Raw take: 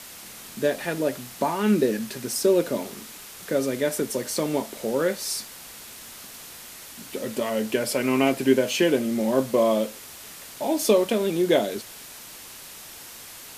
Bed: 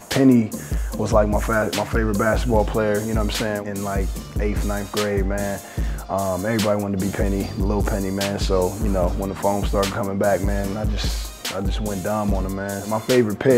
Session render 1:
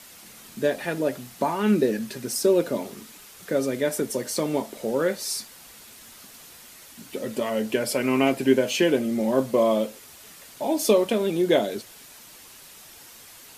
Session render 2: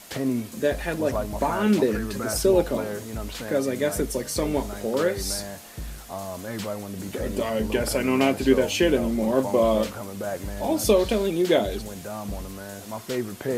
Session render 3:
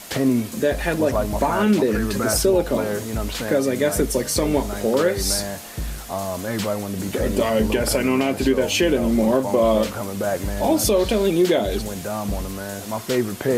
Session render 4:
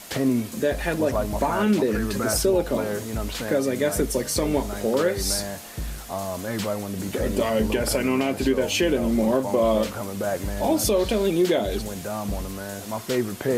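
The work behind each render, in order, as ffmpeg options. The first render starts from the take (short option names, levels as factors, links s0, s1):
-af "afftdn=nr=6:nf=-43"
-filter_complex "[1:a]volume=0.266[s0];[0:a][s0]amix=inputs=2:normalize=0"
-af "alimiter=limit=0.168:level=0:latency=1:release=207,acontrast=82"
-af "volume=0.708"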